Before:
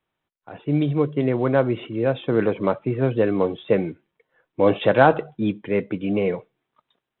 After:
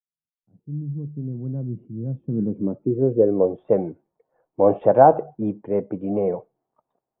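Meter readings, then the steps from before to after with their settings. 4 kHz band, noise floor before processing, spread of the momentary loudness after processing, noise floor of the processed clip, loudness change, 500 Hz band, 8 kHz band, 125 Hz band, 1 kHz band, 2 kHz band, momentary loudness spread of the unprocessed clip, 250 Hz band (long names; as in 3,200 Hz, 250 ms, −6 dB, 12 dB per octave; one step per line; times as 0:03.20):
below −25 dB, −83 dBFS, 16 LU, below −85 dBFS, 0.0 dB, +0.5 dB, can't be measured, −2.0 dB, +2.5 dB, below −10 dB, 9 LU, −2.5 dB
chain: fade in at the beginning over 2.15 s
low-pass filter sweep 180 Hz → 750 Hz, 0:02.25–0:03.69
level −3 dB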